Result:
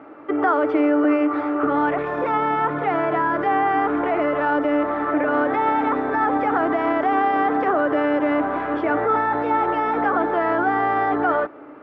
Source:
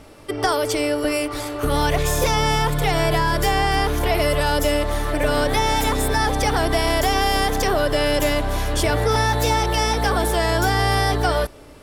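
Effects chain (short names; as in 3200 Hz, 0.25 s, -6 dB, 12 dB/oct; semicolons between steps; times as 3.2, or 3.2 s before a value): limiter -14 dBFS, peak gain reduction 7 dB; speaker cabinet 280–2000 Hz, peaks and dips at 300 Hz +10 dB, 790 Hz +4 dB, 1300 Hz +8 dB; gain +1.5 dB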